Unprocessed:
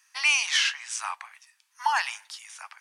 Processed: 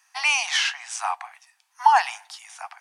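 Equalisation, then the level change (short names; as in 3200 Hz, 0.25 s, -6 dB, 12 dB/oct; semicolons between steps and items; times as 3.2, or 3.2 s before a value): resonant high-pass 730 Hz, resonance Q 7.7; 0.0 dB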